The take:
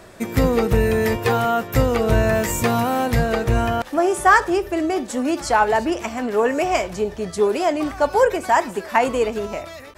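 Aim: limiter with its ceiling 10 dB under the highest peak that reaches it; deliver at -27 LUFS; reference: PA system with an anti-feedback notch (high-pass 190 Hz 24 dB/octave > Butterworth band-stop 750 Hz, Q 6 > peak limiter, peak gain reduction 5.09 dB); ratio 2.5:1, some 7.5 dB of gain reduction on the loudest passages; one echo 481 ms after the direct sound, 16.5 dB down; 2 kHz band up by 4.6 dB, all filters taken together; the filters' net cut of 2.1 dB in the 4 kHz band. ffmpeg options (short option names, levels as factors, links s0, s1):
-af "equalizer=f=2000:t=o:g=7,equalizer=f=4000:t=o:g=-6.5,acompressor=threshold=0.126:ratio=2.5,alimiter=limit=0.188:level=0:latency=1,highpass=f=190:w=0.5412,highpass=f=190:w=1.3066,asuperstop=centerf=750:order=8:qfactor=6,aecho=1:1:481:0.15,volume=0.891,alimiter=limit=0.126:level=0:latency=1"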